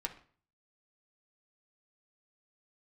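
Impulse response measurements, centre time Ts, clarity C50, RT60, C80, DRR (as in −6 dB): 9 ms, 12.5 dB, 0.45 s, 17.0 dB, 2.0 dB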